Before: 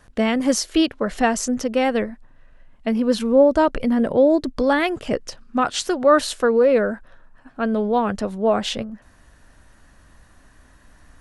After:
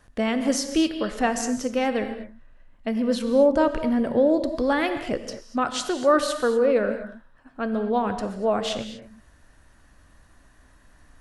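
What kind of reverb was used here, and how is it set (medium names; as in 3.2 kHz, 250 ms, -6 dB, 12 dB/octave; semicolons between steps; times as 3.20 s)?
gated-style reverb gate 270 ms flat, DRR 8 dB; trim -4.5 dB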